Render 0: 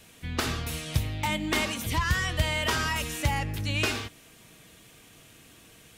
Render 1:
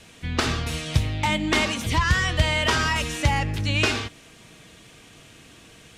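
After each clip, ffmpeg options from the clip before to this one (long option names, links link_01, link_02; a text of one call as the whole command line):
ffmpeg -i in.wav -af "lowpass=7700,volume=5.5dB" out.wav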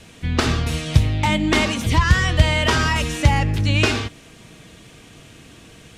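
ffmpeg -i in.wav -af "lowshelf=frequency=490:gain=5,volume=2dB" out.wav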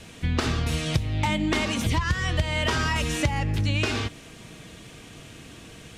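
ffmpeg -i in.wav -af "acompressor=threshold=-21dB:ratio=6" out.wav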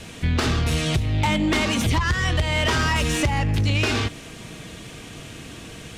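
ffmpeg -i in.wav -af "asoftclip=type=tanh:threshold=-20.5dB,volume=6dB" out.wav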